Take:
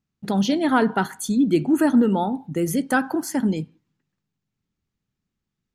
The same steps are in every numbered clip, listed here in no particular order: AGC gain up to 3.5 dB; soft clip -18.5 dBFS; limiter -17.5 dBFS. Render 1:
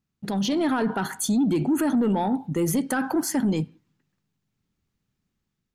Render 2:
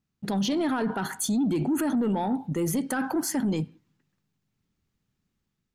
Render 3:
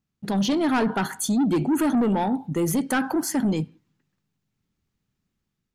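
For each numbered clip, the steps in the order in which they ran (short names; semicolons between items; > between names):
limiter > soft clip > AGC; AGC > limiter > soft clip; soft clip > AGC > limiter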